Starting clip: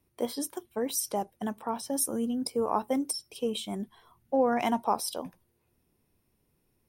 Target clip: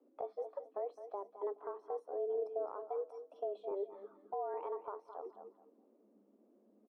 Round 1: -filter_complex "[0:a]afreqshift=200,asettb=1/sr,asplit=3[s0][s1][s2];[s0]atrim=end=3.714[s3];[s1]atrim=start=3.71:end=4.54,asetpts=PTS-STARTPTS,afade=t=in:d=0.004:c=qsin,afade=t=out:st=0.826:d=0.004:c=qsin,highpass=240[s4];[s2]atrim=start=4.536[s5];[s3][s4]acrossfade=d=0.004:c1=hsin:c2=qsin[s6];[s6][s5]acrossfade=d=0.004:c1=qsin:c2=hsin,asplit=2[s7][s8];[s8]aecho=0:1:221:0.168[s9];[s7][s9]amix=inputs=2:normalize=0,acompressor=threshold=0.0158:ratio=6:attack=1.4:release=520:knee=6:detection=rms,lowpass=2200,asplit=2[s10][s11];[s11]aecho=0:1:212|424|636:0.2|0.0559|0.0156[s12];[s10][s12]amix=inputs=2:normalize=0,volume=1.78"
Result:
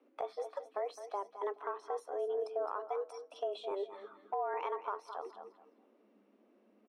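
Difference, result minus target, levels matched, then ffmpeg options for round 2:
2 kHz band +12.5 dB
-filter_complex "[0:a]afreqshift=200,asettb=1/sr,asplit=3[s0][s1][s2];[s0]atrim=end=3.714[s3];[s1]atrim=start=3.71:end=4.54,asetpts=PTS-STARTPTS,afade=t=in:d=0.004:c=qsin,afade=t=out:st=0.826:d=0.004:c=qsin,highpass=240[s4];[s2]atrim=start=4.536[s5];[s3][s4]acrossfade=d=0.004:c1=hsin:c2=qsin[s6];[s6][s5]acrossfade=d=0.004:c1=qsin:c2=hsin,asplit=2[s7][s8];[s8]aecho=0:1:221:0.168[s9];[s7][s9]amix=inputs=2:normalize=0,acompressor=threshold=0.0158:ratio=6:attack=1.4:release=520:knee=6:detection=rms,lowpass=650,asplit=2[s10][s11];[s11]aecho=0:1:212|424|636:0.2|0.0559|0.0156[s12];[s10][s12]amix=inputs=2:normalize=0,volume=1.78"

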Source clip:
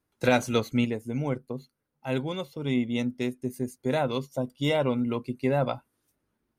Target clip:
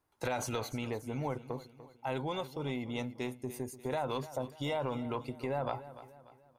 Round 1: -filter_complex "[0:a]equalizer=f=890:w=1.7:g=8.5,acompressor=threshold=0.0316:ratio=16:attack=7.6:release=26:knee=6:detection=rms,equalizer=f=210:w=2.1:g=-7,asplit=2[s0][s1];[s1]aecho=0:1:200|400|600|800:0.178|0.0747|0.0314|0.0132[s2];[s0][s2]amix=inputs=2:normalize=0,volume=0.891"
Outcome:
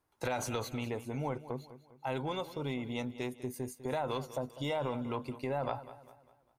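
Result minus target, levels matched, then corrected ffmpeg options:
echo 94 ms early
-filter_complex "[0:a]equalizer=f=890:w=1.7:g=8.5,acompressor=threshold=0.0316:ratio=16:attack=7.6:release=26:knee=6:detection=rms,equalizer=f=210:w=2.1:g=-7,asplit=2[s0][s1];[s1]aecho=0:1:294|588|882|1176:0.178|0.0747|0.0314|0.0132[s2];[s0][s2]amix=inputs=2:normalize=0,volume=0.891"

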